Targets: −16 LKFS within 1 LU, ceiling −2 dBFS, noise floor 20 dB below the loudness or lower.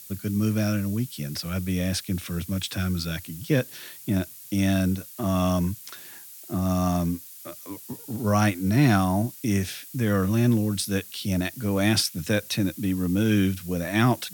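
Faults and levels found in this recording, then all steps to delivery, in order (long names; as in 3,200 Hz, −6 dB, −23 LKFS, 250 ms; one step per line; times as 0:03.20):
background noise floor −44 dBFS; target noise floor −46 dBFS; integrated loudness −25.5 LKFS; sample peak −8.5 dBFS; target loudness −16.0 LKFS
→ broadband denoise 6 dB, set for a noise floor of −44 dBFS
level +9.5 dB
brickwall limiter −2 dBFS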